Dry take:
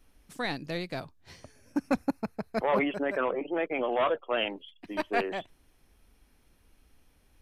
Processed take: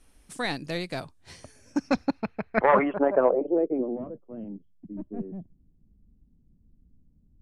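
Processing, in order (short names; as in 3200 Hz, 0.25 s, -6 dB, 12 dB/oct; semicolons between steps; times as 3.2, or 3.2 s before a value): low-pass sweep 9400 Hz -> 190 Hz, 1.53–4.16; 2.57–3.3 transient shaper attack +8 dB, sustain 0 dB; gain +2.5 dB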